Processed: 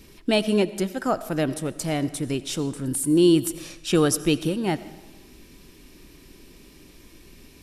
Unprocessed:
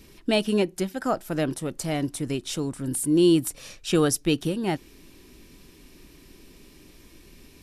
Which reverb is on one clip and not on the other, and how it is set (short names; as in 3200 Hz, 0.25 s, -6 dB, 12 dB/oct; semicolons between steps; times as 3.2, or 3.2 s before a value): digital reverb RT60 1.1 s, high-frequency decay 0.9×, pre-delay 45 ms, DRR 15.5 dB; gain +1.5 dB